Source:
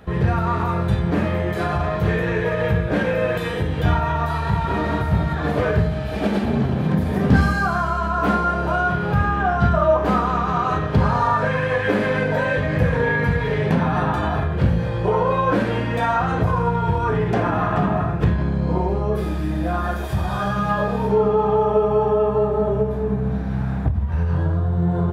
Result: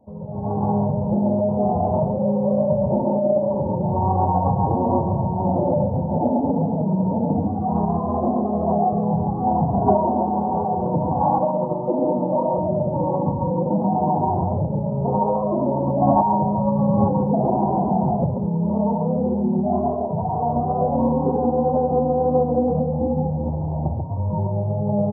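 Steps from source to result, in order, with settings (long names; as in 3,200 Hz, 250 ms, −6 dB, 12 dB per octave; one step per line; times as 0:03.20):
mains-hum notches 50/100/150/200 Hz
downward compressor, threshold −22 dBFS, peak gain reduction 11.5 dB
Chebyshev low-pass with heavy ripple 960 Hz, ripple 6 dB
low-shelf EQ 390 Hz −11 dB
repeating echo 64 ms, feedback 40%, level −11.5 dB
tape wow and flutter 17 cents
on a send: single-tap delay 139 ms −3.5 dB
on the sum: automatic gain control gain up to 13 dB
parametric band 140 Hz +3.5 dB 0.57 octaves
phase-vocoder pitch shift with formants kept +3 semitones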